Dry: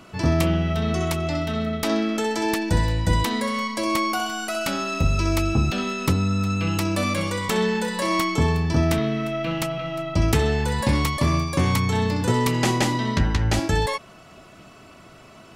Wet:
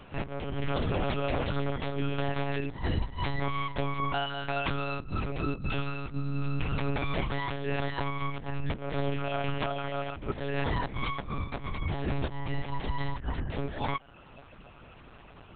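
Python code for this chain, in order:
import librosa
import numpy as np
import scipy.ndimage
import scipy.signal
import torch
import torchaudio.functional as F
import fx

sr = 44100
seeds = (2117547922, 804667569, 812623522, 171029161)

y = fx.dereverb_blind(x, sr, rt60_s=0.56)
y = fx.over_compress(y, sr, threshold_db=-25.0, ratio=-0.5)
y = fx.lpc_monotone(y, sr, seeds[0], pitch_hz=140.0, order=8)
y = y * librosa.db_to_amplitude(-4.5)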